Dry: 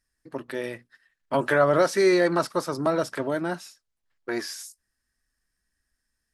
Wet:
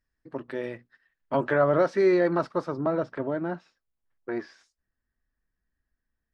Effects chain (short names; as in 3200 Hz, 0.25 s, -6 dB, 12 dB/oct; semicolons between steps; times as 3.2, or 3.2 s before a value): tape spacing loss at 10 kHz 22 dB, from 1.43 s at 10 kHz 29 dB, from 2.71 s at 10 kHz 41 dB